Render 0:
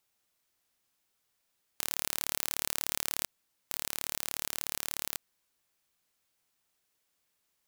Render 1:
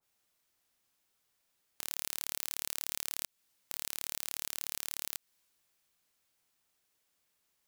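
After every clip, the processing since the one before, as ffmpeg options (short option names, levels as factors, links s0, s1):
-af "acompressor=threshold=0.0126:ratio=2.5,adynamicequalizer=threshold=0.00126:dfrequency=2000:dqfactor=0.7:tfrequency=2000:tqfactor=0.7:attack=5:release=100:ratio=0.375:range=2.5:mode=boostabove:tftype=highshelf"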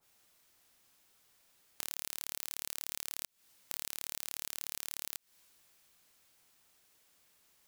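-af "acompressor=threshold=0.00794:ratio=6,volume=2.82"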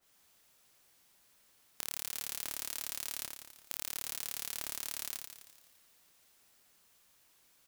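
-af "aecho=1:1:85|170|255|340|425|510|595|680:0.531|0.319|0.191|0.115|0.0688|0.0413|0.0248|0.0149,aeval=exprs='val(0)*sgn(sin(2*PI*550*n/s))':c=same"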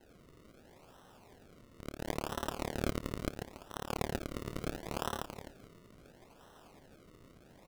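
-af "aresample=8000,asoftclip=type=tanh:threshold=0.0119,aresample=44100,acrusher=samples=37:mix=1:aa=0.000001:lfo=1:lforange=37:lforate=0.73,volume=6.68"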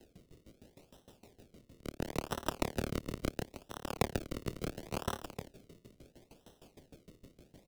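-filter_complex "[0:a]acrossover=split=150|760|2000[s0][s1][s2][s3];[s2]aeval=exprs='sgn(val(0))*max(abs(val(0))-0.00251,0)':c=same[s4];[s0][s1][s4][s3]amix=inputs=4:normalize=0,aeval=exprs='val(0)*pow(10,-22*if(lt(mod(6.5*n/s,1),2*abs(6.5)/1000),1-mod(6.5*n/s,1)/(2*abs(6.5)/1000),(mod(6.5*n/s,1)-2*abs(6.5)/1000)/(1-2*abs(6.5)/1000))/20)':c=same,volume=2.37"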